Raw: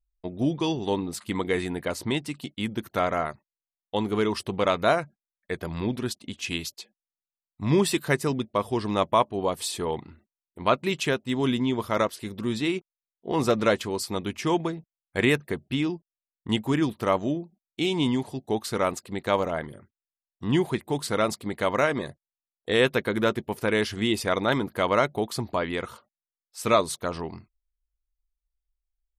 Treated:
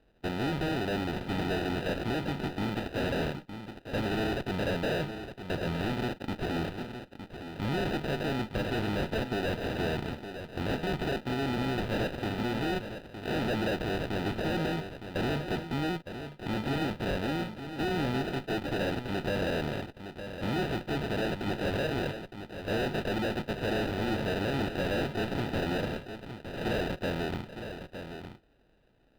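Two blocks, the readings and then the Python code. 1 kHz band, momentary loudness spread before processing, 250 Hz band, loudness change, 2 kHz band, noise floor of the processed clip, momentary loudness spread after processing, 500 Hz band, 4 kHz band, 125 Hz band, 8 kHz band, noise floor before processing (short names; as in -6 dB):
-7.0 dB, 10 LU, -4.5 dB, -6.0 dB, -4.0 dB, -54 dBFS, 10 LU, -6.0 dB, -5.0 dB, -1.5 dB, -13.5 dB, under -85 dBFS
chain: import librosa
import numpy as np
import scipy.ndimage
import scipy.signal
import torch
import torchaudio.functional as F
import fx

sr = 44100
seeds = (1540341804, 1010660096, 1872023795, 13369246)

p1 = fx.bin_compress(x, sr, power=0.6)
p2 = fx.sample_hold(p1, sr, seeds[0], rate_hz=1100.0, jitter_pct=0)
p3 = fx.tube_stage(p2, sr, drive_db=28.0, bias=0.55)
p4 = fx.high_shelf_res(p3, sr, hz=5000.0, db=-10.0, q=1.5)
y = p4 + fx.echo_single(p4, sr, ms=912, db=-9.5, dry=0)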